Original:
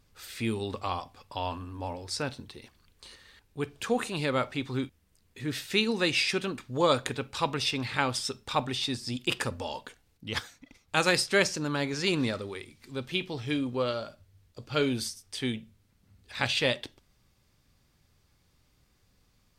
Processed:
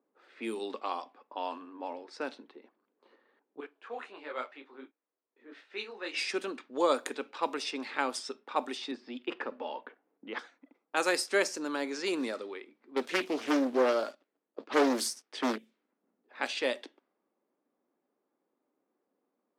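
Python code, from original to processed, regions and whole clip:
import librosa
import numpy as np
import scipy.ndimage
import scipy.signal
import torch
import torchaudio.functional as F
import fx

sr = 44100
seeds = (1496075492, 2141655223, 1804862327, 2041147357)

y = fx.chain(x, sr, fx.highpass(hz=890.0, slope=6),
    fx.detune_double(cents=51), at=(3.6, 6.14))
y = fx.chain(y, sr, fx.lowpass(hz=2400.0, slope=12),
    fx.band_squash(depth_pct=40), at=(8.91, 10.39))
y = fx.chain(y, sr, fx.leveller(passes=2),
    fx.doppler_dist(depth_ms=0.69), at=(12.96, 15.58))
y = fx.dynamic_eq(y, sr, hz=3400.0, q=1.1, threshold_db=-42.0, ratio=4.0, max_db=-7)
y = fx.env_lowpass(y, sr, base_hz=740.0, full_db=-26.0)
y = scipy.signal.sosfilt(scipy.signal.butter(6, 260.0, 'highpass', fs=sr, output='sos'), y)
y = y * librosa.db_to_amplitude(-2.0)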